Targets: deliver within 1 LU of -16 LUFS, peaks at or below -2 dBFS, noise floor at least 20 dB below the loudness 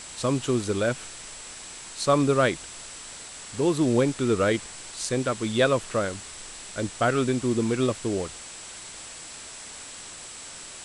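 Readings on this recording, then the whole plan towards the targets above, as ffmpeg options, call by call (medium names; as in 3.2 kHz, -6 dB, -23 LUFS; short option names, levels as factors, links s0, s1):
steady tone 7.7 kHz; tone level -44 dBFS; noise floor -42 dBFS; noise floor target -46 dBFS; loudness -25.5 LUFS; peak level -9.5 dBFS; loudness target -16.0 LUFS
-> -af "bandreject=f=7700:w=30"
-af "afftdn=nr=6:nf=-42"
-af "volume=2.99,alimiter=limit=0.794:level=0:latency=1"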